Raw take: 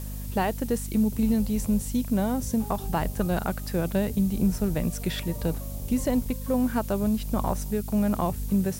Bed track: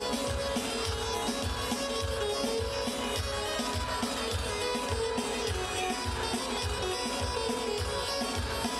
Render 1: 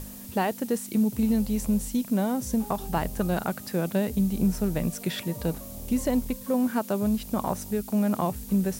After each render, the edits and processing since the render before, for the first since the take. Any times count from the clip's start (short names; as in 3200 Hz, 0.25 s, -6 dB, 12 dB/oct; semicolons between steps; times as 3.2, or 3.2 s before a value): notches 50/100/150 Hz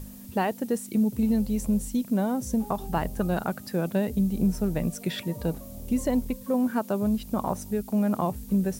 denoiser 6 dB, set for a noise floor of -42 dBFS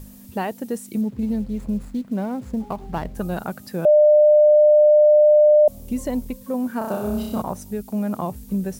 1.01–3.15 median filter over 15 samples; 3.85–5.68 bleep 601 Hz -9.5 dBFS; 6.78–7.42 flutter echo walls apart 5.4 m, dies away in 0.93 s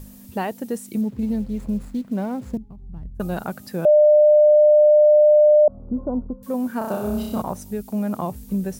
2.57–3.2 EQ curve 100 Hz 0 dB, 270 Hz -14 dB, 660 Hz -28 dB; 5.49–6.43 brick-wall FIR low-pass 1500 Hz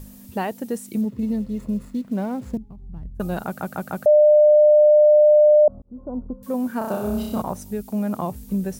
1.05–2.03 notch comb 790 Hz; 3.46 stutter in place 0.15 s, 4 plays; 5.82–6.39 fade in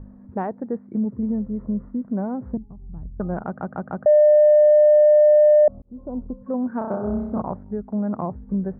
Wiener smoothing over 15 samples; LPF 1700 Hz 24 dB/oct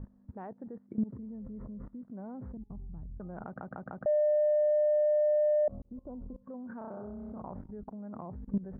level quantiser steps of 21 dB; limiter -23 dBFS, peak gain reduction 7 dB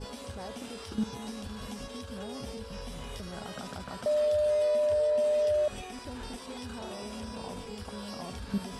add bed track -11.5 dB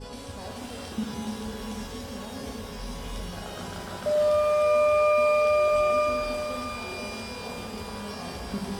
shimmer reverb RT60 3.9 s, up +12 st, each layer -8 dB, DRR -1 dB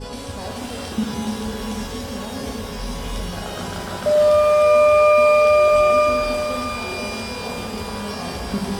gain +8 dB